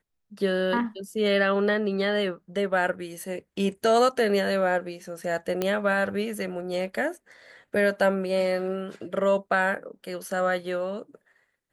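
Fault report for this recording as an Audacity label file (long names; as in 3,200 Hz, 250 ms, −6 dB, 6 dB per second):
5.620000	5.620000	click −12 dBFS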